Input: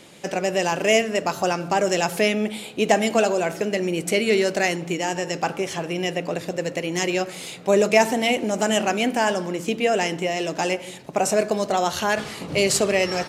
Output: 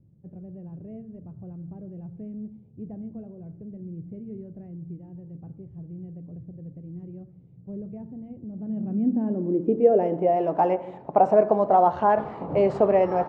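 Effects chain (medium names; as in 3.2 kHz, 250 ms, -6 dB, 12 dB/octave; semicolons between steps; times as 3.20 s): low-pass sweep 110 Hz -> 860 Hz, 8.44–10.50 s; trim -1.5 dB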